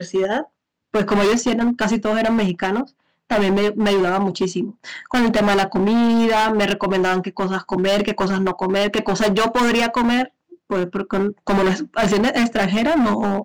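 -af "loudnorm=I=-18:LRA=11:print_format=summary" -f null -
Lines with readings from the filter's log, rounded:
Input Integrated:    -19.1 LUFS
Input True Peak:     -13.1 dBTP
Input LRA:             1.7 LU
Input Threshold:     -29.2 LUFS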